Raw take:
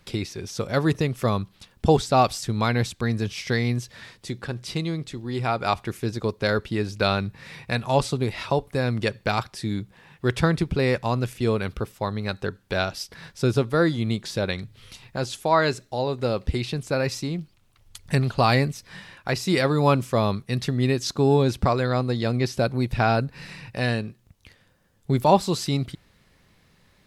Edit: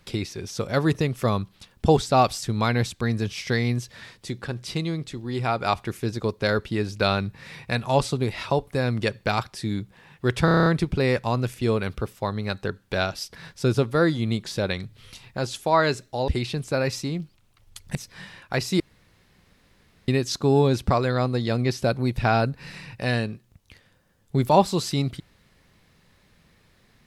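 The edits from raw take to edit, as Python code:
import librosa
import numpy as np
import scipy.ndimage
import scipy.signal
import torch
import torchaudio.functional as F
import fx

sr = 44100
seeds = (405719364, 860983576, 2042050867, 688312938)

y = fx.edit(x, sr, fx.stutter(start_s=10.45, slice_s=0.03, count=8),
    fx.cut(start_s=16.07, length_s=0.4),
    fx.cut(start_s=18.14, length_s=0.56),
    fx.room_tone_fill(start_s=19.55, length_s=1.28), tone=tone)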